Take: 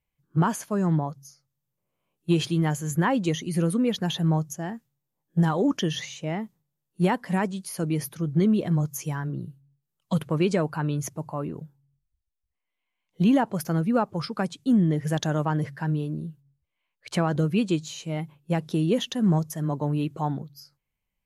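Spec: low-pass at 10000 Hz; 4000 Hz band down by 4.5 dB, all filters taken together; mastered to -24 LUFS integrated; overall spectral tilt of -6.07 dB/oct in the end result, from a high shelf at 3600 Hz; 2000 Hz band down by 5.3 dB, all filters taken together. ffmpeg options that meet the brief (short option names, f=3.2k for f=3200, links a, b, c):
-af "lowpass=10k,equalizer=f=2k:t=o:g=-7,highshelf=f=3.6k:g=6,equalizer=f=4k:t=o:g=-7,volume=2.5dB"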